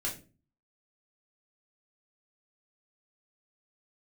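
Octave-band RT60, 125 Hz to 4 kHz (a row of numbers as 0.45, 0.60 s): 0.60, 0.55, 0.40, 0.25, 0.30, 0.25 s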